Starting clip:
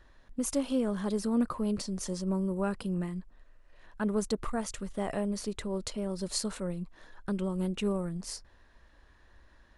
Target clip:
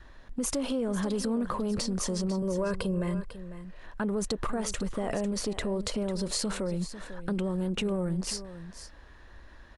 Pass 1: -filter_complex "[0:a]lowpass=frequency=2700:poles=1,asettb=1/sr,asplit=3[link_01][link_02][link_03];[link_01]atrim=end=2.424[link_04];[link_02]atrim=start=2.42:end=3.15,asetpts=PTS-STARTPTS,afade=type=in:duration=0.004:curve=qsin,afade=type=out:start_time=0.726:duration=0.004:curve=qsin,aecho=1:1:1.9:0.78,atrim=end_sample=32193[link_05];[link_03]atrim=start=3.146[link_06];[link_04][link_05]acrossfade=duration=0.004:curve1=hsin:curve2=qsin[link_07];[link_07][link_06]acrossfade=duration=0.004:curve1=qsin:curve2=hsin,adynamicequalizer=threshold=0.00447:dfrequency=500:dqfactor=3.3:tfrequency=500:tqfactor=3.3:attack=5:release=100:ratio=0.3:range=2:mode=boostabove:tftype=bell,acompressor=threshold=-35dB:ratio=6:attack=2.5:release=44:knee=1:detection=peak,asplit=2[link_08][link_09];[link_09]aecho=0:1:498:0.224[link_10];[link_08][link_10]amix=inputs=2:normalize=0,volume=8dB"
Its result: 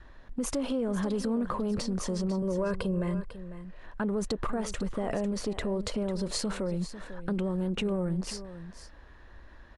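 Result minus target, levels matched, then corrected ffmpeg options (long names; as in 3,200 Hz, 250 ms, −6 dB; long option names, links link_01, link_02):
8,000 Hz band −4.5 dB
-filter_complex "[0:a]lowpass=frequency=7500:poles=1,asettb=1/sr,asplit=3[link_01][link_02][link_03];[link_01]atrim=end=2.424[link_04];[link_02]atrim=start=2.42:end=3.15,asetpts=PTS-STARTPTS,afade=type=in:duration=0.004:curve=qsin,afade=type=out:start_time=0.726:duration=0.004:curve=qsin,aecho=1:1:1.9:0.78,atrim=end_sample=32193[link_05];[link_03]atrim=start=3.146[link_06];[link_04][link_05]acrossfade=duration=0.004:curve1=hsin:curve2=qsin[link_07];[link_07][link_06]acrossfade=duration=0.004:curve1=qsin:curve2=hsin,adynamicequalizer=threshold=0.00447:dfrequency=500:dqfactor=3.3:tfrequency=500:tqfactor=3.3:attack=5:release=100:ratio=0.3:range=2:mode=boostabove:tftype=bell,acompressor=threshold=-35dB:ratio=6:attack=2.5:release=44:knee=1:detection=peak,asplit=2[link_08][link_09];[link_09]aecho=0:1:498:0.224[link_10];[link_08][link_10]amix=inputs=2:normalize=0,volume=8dB"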